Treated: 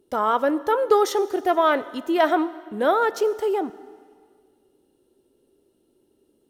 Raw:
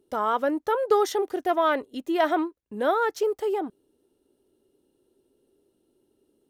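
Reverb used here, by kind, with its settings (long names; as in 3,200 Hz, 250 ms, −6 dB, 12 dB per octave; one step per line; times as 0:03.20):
dense smooth reverb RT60 1.9 s, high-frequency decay 0.95×, DRR 15 dB
level +3.5 dB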